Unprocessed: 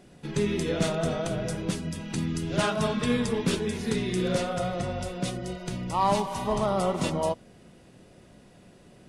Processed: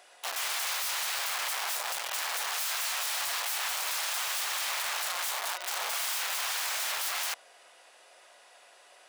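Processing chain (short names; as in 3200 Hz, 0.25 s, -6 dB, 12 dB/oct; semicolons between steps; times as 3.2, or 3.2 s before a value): in parallel at -1.5 dB: limiter -21 dBFS, peak gain reduction 7 dB; on the sum: wrapped overs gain 27 dB; HPF 700 Hz 24 dB/oct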